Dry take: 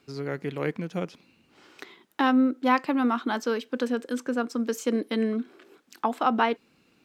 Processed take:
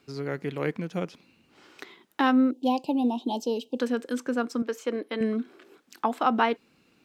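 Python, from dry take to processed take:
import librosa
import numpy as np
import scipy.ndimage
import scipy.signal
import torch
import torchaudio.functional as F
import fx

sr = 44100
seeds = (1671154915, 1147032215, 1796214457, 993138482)

y = fx.ellip_bandstop(x, sr, low_hz=880.0, high_hz=2800.0, order=3, stop_db=40, at=(2.51, 3.8))
y = fx.bass_treble(y, sr, bass_db=-14, treble_db=-10, at=(4.62, 5.21))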